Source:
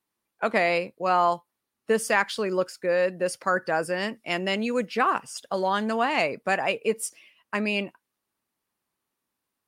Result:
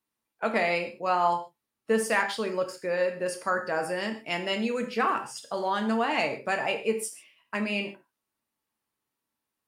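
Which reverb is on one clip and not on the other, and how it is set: non-linear reverb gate 0.17 s falling, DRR 4 dB; gain -4 dB

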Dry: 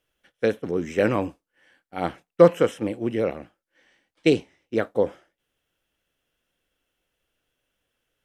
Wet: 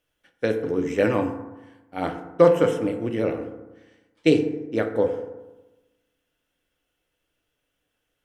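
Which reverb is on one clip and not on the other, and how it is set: FDN reverb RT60 1.1 s, low-frequency decay 1.1×, high-frequency decay 0.4×, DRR 5 dB; gain -1 dB

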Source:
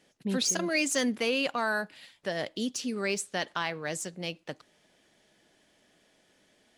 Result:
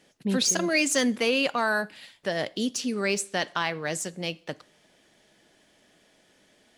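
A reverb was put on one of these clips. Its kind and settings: plate-style reverb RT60 0.51 s, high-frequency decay 1×, DRR 20 dB; gain +4 dB

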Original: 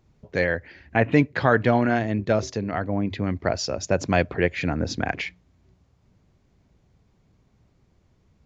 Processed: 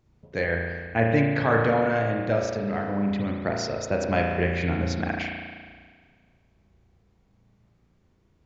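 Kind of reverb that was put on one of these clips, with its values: spring tank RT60 1.7 s, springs 35 ms, chirp 40 ms, DRR 0 dB; gain -4.5 dB

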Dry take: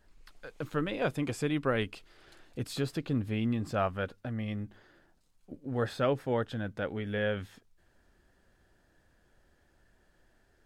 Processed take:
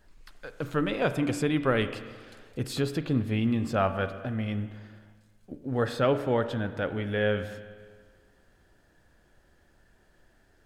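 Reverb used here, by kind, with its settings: spring tank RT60 1.6 s, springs 31/38/45 ms, chirp 50 ms, DRR 10 dB; gain +4 dB

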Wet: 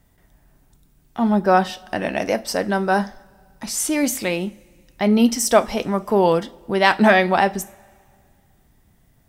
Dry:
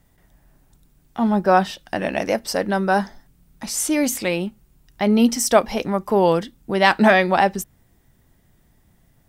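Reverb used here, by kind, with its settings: two-slope reverb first 0.31 s, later 2.1 s, from -21 dB, DRR 12 dB

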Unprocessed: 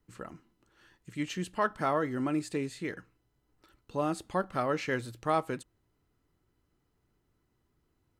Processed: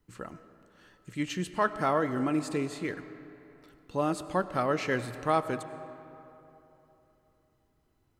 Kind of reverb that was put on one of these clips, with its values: digital reverb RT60 3.3 s, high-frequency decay 0.55×, pre-delay 55 ms, DRR 12.5 dB; gain +2 dB

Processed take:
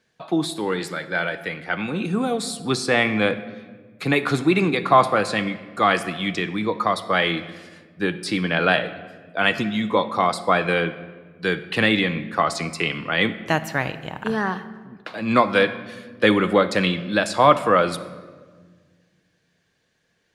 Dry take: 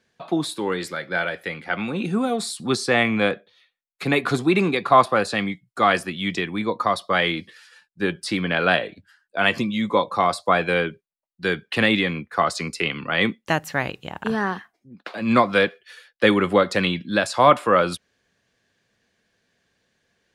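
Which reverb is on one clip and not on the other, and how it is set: shoebox room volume 1600 m³, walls mixed, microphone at 0.53 m

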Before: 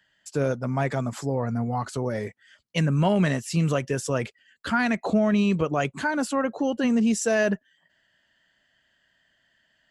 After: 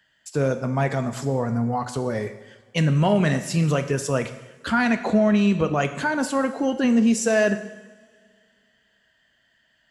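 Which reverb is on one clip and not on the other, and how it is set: two-slope reverb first 0.95 s, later 2.5 s, from -18 dB, DRR 8.5 dB; gain +2 dB

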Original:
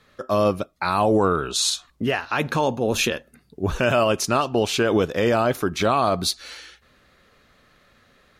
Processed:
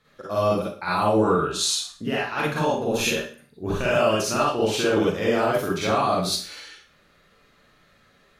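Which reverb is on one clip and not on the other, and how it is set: Schroeder reverb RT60 0.42 s, DRR -6.5 dB; gain -8.5 dB

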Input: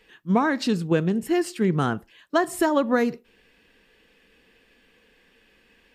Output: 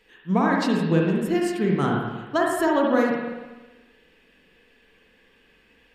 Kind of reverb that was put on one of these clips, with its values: spring tank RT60 1.2 s, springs 43/55 ms, chirp 65 ms, DRR -1.5 dB; gain -2.5 dB

